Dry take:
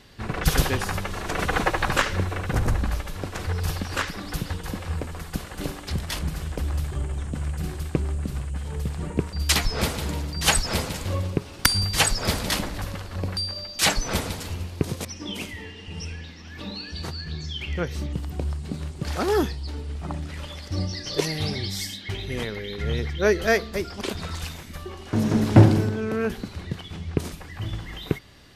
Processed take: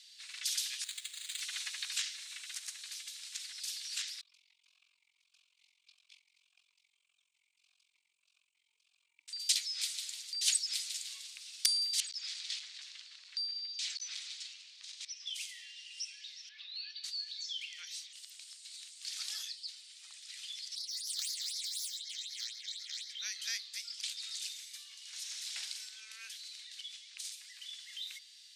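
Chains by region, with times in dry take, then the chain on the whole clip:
0.84–1.41 s: rippled Chebyshev low-pass 7.7 kHz, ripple 6 dB + careless resampling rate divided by 8×, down none, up hold
4.21–9.28 s: AM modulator 44 Hz, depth 85% + talking filter a-u 1.7 Hz
12.00–15.27 s: overload inside the chain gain 25 dB + distance through air 120 m
16.49–17.04 s: distance through air 300 m + level flattener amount 50%
20.75–23.10 s: self-modulated delay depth 0.58 ms + doubling 27 ms -3 dB + phase shifter stages 6, 4 Hz, lowest notch 650–2700 Hz
whole clip: Chebyshev high-pass 2.3 kHz, order 3; high-order bell 5.7 kHz +11.5 dB; compression 1.5:1, threshold -33 dBFS; trim -8.5 dB

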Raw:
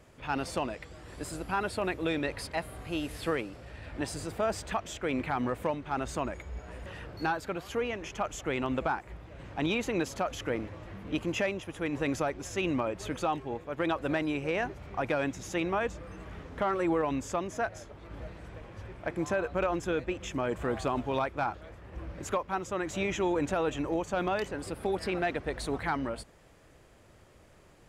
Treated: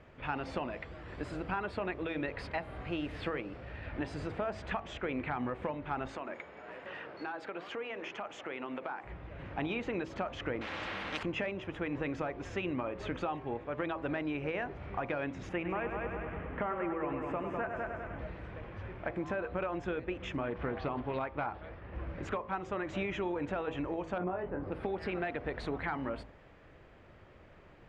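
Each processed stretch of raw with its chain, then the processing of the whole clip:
6.07–9.04 s: high-pass 290 Hz + hum notches 60/120/180/240/300/360/420/480 Hz + compression 5:1, threshold -37 dBFS
10.61–11.23 s: high-pass 470 Hz 6 dB/octave + comb 3.7 ms, depth 43% + spectrum-flattening compressor 4:1
15.49–18.19 s: high-order bell 5.1 kHz -14 dB 1.3 oct + multi-head delay 100 ms, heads first and second, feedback 51%, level -9 dB
20.41–22.06 s: steep low-pass 5.8 kHz 72 dB/octave + loudspeaker Doppler distortion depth 0.27 ms
24.18–24.72 s: low-pass 1.1 kHz + doubling 22 ms -4 dB
whole clip: Chebyshev low-pass 2.4 kHz, order 2; compression, threshold -34 dBFS; de-hum 54.13 Hz, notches 22; trim +2.5 dB

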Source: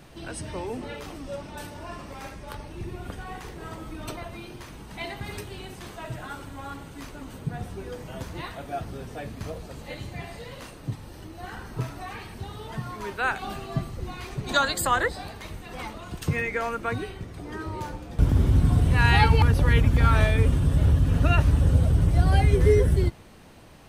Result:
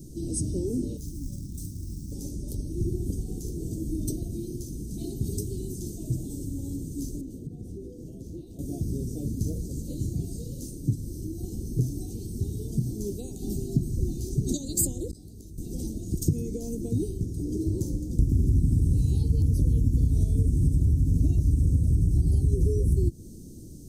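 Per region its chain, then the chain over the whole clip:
0.97–2.12 s: FFT filter 120 Hz 0 dB, 220 Hz -5 dB, 650 Hz -21 dB, 2.7 kHz -7 dB, 4 kHz -4 dB + short-mantissa float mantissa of 2-bit
7.21–8.59 s: tone controls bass -8 dB, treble -13 dB + compression 10:1, threshold -39 dBFS
15.11–15.58 s: inverted gate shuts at -31 dBFS, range -30 dB + doubling 19 ms -12 dB + level flattener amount 70%
whole clip: compression 10:1, threshold -26 dBFS; Chebyshev band-stop 340–6100 Hz, order 3; trim +8.5 dB

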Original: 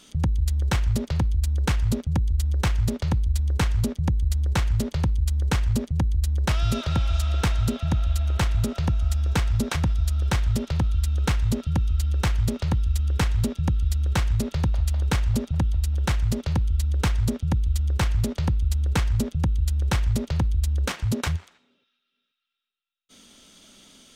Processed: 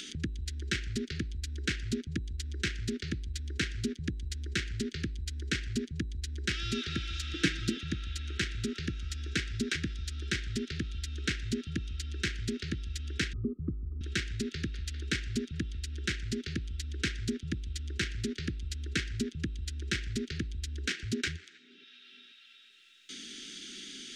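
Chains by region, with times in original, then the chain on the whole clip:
7.33–7.83 s: comb 6.2 ms, depth 81% + small resonant body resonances 270/850 Hz, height 8 dB, ringing for 25 ms
13.33–14.01 s: brick-wall FIR low-pass 1.3 kHz + three bands compressed up and down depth 40%
whole clip: elliptic band-stop 380–1600 Hz, stop band 50 dB; three-band isolator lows -16 dB, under 240 Hz, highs -24 dB, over 7.3 kHz; upward compressor, threshold -34 dBFS

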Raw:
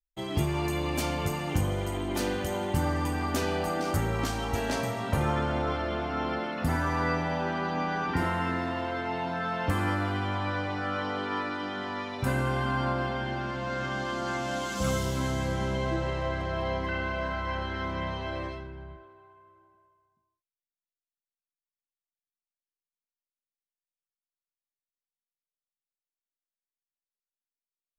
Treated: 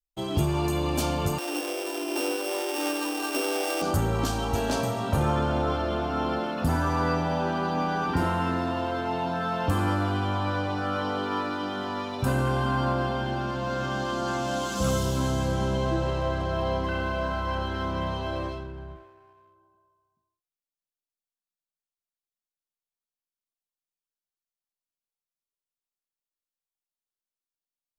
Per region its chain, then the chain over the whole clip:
1.38–3.82 s: sorted samples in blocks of 16 samples + Chebyshev high-pass 270 Hz, order 10
whole clip: peaking EQ 2 kHz -11.5 dB 0.43 oct; waveshaping leveller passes 1

